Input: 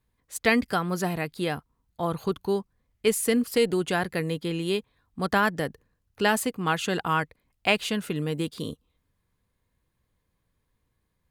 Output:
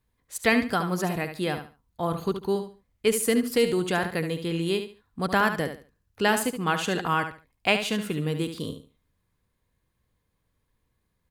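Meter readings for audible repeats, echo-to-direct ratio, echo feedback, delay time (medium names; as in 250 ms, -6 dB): 3, -8.5 dB, 24%, 72 ms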